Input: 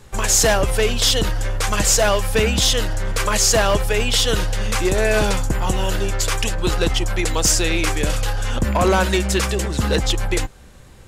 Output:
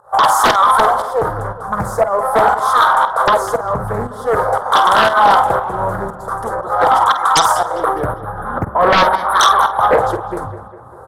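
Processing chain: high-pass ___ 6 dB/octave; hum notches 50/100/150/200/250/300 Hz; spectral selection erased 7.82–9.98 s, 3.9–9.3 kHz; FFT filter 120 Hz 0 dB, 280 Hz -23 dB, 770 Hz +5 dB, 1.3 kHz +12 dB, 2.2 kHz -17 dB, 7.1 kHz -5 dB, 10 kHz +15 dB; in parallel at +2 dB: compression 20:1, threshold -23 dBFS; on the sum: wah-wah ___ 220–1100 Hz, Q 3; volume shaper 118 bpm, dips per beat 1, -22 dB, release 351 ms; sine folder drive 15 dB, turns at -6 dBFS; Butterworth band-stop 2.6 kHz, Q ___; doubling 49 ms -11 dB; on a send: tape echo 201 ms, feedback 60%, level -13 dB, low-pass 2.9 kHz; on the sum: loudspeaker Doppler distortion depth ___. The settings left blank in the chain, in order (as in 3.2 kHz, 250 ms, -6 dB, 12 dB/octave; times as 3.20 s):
110 Hz, 0.45 Hz, 2.2, 0.56 ms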